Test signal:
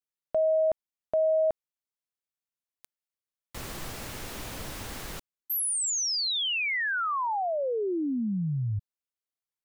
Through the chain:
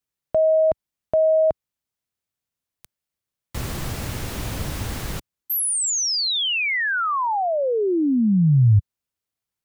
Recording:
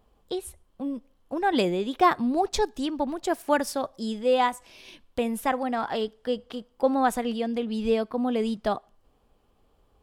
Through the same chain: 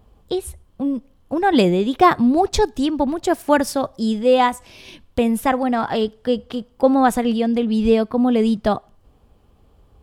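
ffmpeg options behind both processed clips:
ffmpeg -i in.wav -af "equalizer=frequency=86:width=0.48:gain=10,volume=6dB" out.wav

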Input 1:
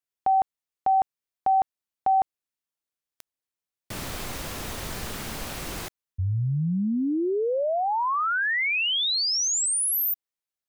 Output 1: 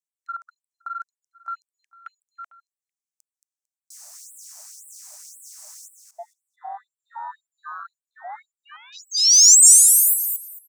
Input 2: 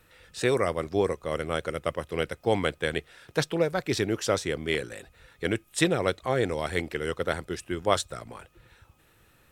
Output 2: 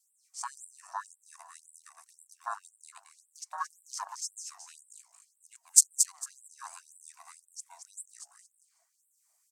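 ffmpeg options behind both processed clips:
ffmpeg -i in.wav -filter_complex "[0:a]aeval=exprs='val(0)*sin(2*PI*600*n/s)':channel_layout=same,alimiter=limit=-16dB:level=0:latency=1:release=245,highshelf=frequency=4400:width_type=q:width=3:gain=10.5,afwtdn=0.0562,highpass=frequency=300:poles=1,asplit=2[link_01][link_02];[link_02]aecho=0:1:225|450|675:0.447|0.0804|0.0145[link_03];[link_01][link_03]amix=inputs=2:normalize=0,acontrast=25,equalizer=frequency=8100:width=2.2:gain=7.5,afftfilt=real='re*gte(b*sr/1024,570*pow(7700/570,0.5+0.5*sin(2*PI*1.9*pts/sr)))':imag='im*gte(b*sr/1024,570*pow(7700/570,0.5+0.5*sin(2*PI*1.9*pts/sr)))':win_size=1024:overlap=0.75,volume=-5.5dB" out.wav

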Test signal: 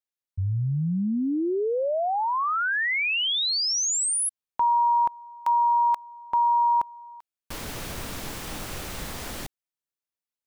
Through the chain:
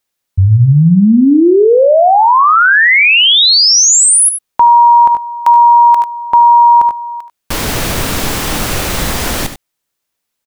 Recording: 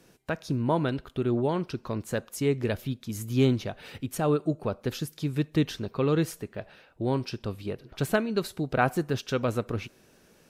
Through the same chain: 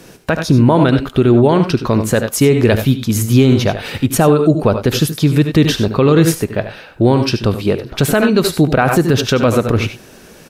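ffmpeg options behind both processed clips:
ffmpeg -i in.wav -af "aecho=1:1:76|94:0.237|0.2,alimiter=level_in=19.5dB:limit=-1dB:release=50:level=0:latency=1,volume=-1dB" out.wav

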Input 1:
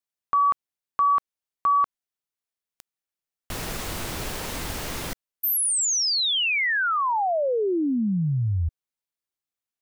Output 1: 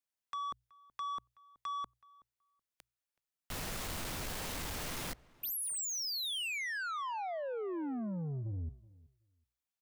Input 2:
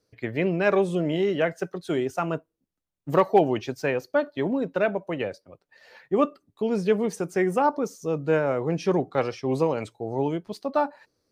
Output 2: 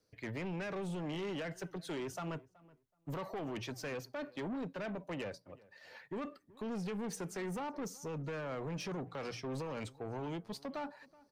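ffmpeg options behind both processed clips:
ffmpeg -i in.wav -filter_complex "[0:a]equalizer=frequency=380:width_type=o:width=0.63:gain=-3,bandreject=frequency=60:width_type=h:width=6,bandreject=frequency=120:width_type=h:width=6,alimiter=limit=-20dB:level=0:latency=1:release=43,acrossover=split=360|1100|3000[link_01][link_02][link_03][link_04];[link_01]acompressor=threshold=-28dB:ratio=4[link_05];[link_02]acompressor=threshold=-37dB:ratio=4[link_06];[link_03]acompressor=threshold=-36dB:ratio=4[link_07];[link_04]acompressor=threshold=-28dB:ratio=4[link_08];[link_05][link_06][link_07][link_08]amix=inputs=4:normalize=0,asoftclip=type=tanh:threshold=-32.5dB,asplit=2[link_09][link_10];[link_10]adelay=375,lowpass=frequency=1900:poles=1,volume=-22dB,asplit=2[link_11][link_12];[link_12]adelay=375,lowpass=frequency=1900:poles=1,volume=0.17[link_13];[link_11][link_13]amix=inputs=2:normalize=0[link_14];[link_09][link_14]amix=inputs=2:normalize=0,volume=-3.5dB" out.wav

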